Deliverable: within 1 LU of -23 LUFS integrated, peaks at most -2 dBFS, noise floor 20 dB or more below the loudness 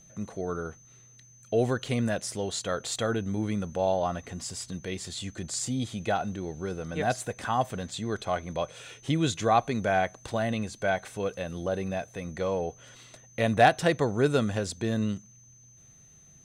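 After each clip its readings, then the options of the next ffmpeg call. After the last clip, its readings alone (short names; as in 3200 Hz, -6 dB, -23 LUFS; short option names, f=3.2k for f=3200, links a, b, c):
steady tone 6200 Hz; tone level -54 dBFS; loudness -29.5 LUFS; peak -7.5 dBFS; loudness target -23.0 LUFS
-> -af "bandreject=f=6.2k:w=30"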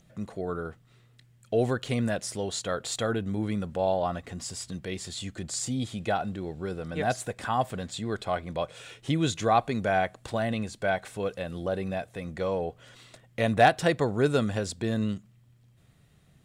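steady tone none; loudness -29.5 LUFS; peak -7.5 dBFS; loudness target -23.0 LUFS
-> -af "volume=6.5dB,alimiter=limit=-2dB:level=0:latency=1"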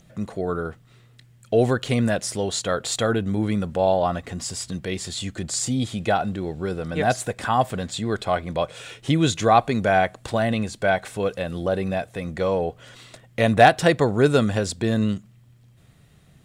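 loudness -23.0 LUFS; peak -2.0 dBFS; noise floor -54 dBFS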